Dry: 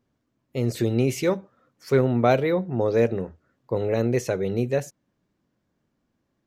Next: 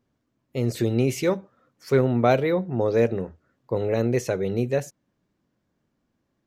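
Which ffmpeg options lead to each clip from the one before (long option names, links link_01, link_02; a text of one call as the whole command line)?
ffmpeg -i in.wav -af anull out.wav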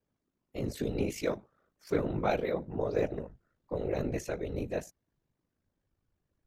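ffmpeg -i in.wav -af "asubboost=boost=10:cutoff=52,aeval=exprs='val(0)*sin(2*PI*26*n/s)':channel_layout=same,afftfilt=real='hypot(re,im)*cos(2*PI*random(0))':imag='hypot(re,im)*sin(2*PI*random(1))':win_size=512:overlap=0.75" out.wav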